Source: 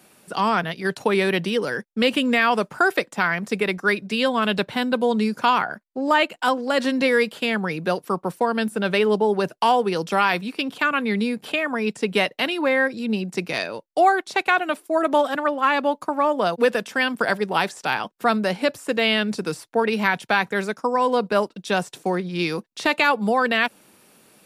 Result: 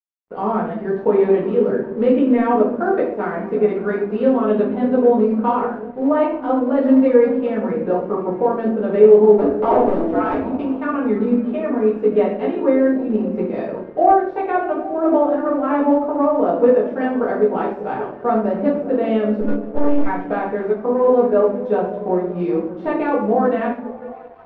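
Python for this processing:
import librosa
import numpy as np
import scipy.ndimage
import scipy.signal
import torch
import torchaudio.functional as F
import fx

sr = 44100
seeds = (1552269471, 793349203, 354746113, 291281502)

p1 = fx.cycle_switch(x, sr, every=2, mode='inverted', at=(9.37, 10.39), fade=0.02)
p2 = fx.comb(p1, sr, ms=6.9, depth=0.46, at=(15.62, 16.26))
p3 = fx.lpc_monotone(p2, sr, seeds[0], pitch_hz=290.0, order=10, at=(19.4, 20.06))
p4 = fx.room_shoebox(p3, sr, seeds[1], volume_m3=81.0, walls='mixed', distance_m=1.7)
p5 = fx.quant_float(p4, sr, bits=2)
p6 = fx.peak_eq(p5, sr, hz=430.0, db=9.0, octaves=1.9)
p7 = p6 + fx.echo_stepped(p6, sr, ms=192, hz=180.0, octaves=0.7, feedback_pct=70, wet_db=-7, dry=0)
p8 = np.sign(p7) * np.maximum(np.abs(p7) - 10.0 ** (-30.0 / 20.0), 0.0)
p9 = scipy.signal.sosfilt(scipy.signal.butter(2, 1100.0, 'lowpass', fs=sr, output='sos'), p8)
y = F.gain(torch.from_numpy(p9), -10.0).numpy()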